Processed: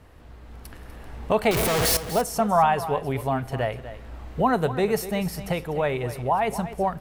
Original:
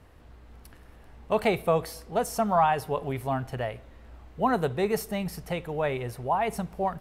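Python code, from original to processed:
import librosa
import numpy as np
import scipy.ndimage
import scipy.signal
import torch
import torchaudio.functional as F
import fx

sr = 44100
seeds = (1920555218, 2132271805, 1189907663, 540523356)

y = fx.clip_1bit(x, sr, at=(1.51, 1.97))
y = fx.recorder_agc(y, sr, target_db=-19.0, rise_db_per_s=7.1, max_gain_db=30)
y = y + 10.0 ** (-13.5 / 20.0) * np.pad(y, (int(246 * sr / 1000.0), 0))[:len(y)]
y = y * 10.0 ** (3.0 / 20.0)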